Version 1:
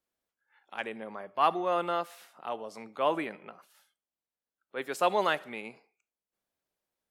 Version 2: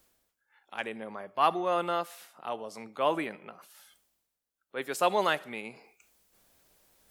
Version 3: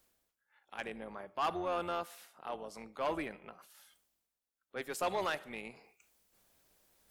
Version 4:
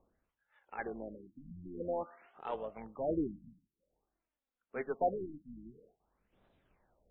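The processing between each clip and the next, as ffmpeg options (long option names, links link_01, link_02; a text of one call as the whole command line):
ffmpeg -i in.wav -af "highshelf=frequency=5000:gain=6,areverse,acompressor=mode=upward:threshold=-49dB:ratio=2.5,areverse,lowshelf=frequency=84:gain=9.5" out.wav
ffmpeg -i in.wav -af "tremolo=f=270:d=0.519,asoftclip=type=tanh:threshold=-24dB,volume=-2.5dB" out.wav
ffmpeg -i in.wav -af "aphaser=in_gain=1:out_gain=1:delay=4.8:decay=0.42:speed=0.31:type=triangular,highshelf=frequency=2100:gain=-9,afftfilt=real='re*lt(b*sr/1024,290*pow(4100/290,0.5+0.5*sin(2*PI*0.5*pts/sr)))':imag='im*lt(b*sr/1024,290*pow(4100/290,0.5+0.5*sin(2*PI*0.5*pts/sr)))':win_size=1024:overlap=0.75,volume=3dB" out.wav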